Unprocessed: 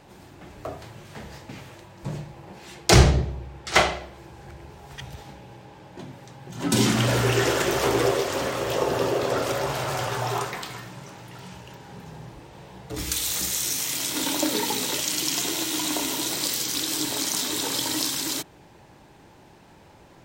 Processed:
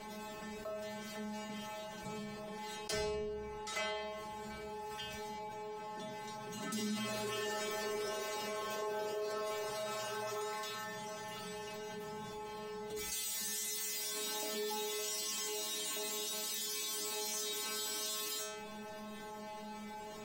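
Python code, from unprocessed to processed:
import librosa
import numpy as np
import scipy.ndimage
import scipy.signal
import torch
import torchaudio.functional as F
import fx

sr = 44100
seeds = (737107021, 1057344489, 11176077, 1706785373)

y = fx.hum_notches(x, sr, base_hz=50, count=4)
y = fx.stiff_resonator(y, sr, f0_hz=210.0, decay_s=0.6, stiffness=0.002)
y = fx.env_flatten(y, sr, amount_pct=70)
y = y * librosa.db_to_amplitude(-5.5)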